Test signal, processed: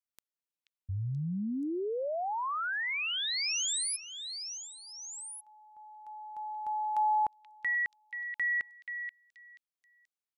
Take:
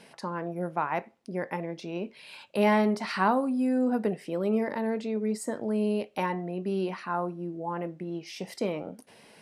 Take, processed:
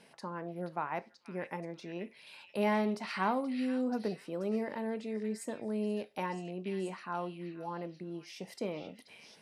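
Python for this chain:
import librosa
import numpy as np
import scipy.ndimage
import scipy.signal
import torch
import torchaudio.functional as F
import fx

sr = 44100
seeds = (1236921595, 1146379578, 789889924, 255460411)

y = fx.echo_stepped(x, sr, ms=481, hz=2900.0, octaves=0.7, feedback_pct=70, wet_db=-3.5)
y = y * 10.0 ** (-7.0 / 20.0)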